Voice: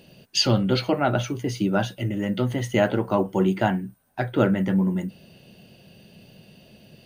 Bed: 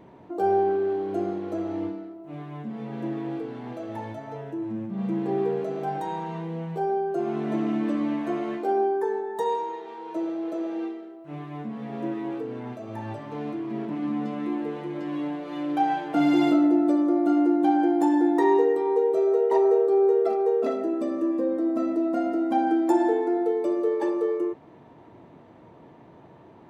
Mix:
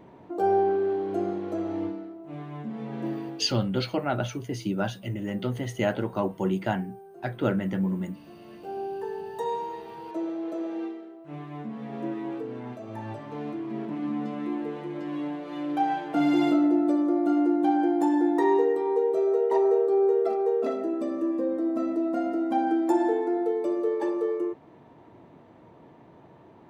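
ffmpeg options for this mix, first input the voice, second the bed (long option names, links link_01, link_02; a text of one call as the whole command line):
ffmpeg -i stem1.wav -i stem2.wav -filter_complex "[0:a]adelay=3050,volume=-5.5dB[link_01];[1:a]volume=18dB,afade=type=out:start_time=3.1:duration=0.44:silence=0.1,afade=type=in:start_time=8.39:duration=1.39:silence=0.11885[link_02];[link_01][link_02]amix=inputs=2:normalize=0" out.wav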